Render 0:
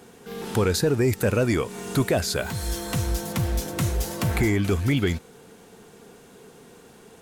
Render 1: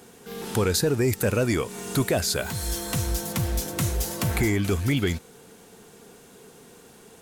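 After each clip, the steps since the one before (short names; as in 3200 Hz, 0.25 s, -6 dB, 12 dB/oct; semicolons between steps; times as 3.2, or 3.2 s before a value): high shelf 4600 Hz +6 dB; gain -1.5 dB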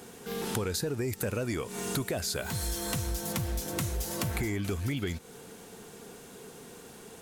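compressor, threshold -31 dBFS, peak gain reduction 11.5 dB; gain +1.5 dB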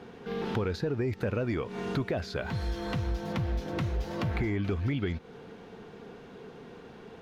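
air absorption 280 m; gain +2.5 dB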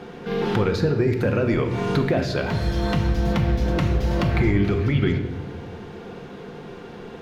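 shoebox room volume 660 m³, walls mixed, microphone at 0.87 m; gain +8 dB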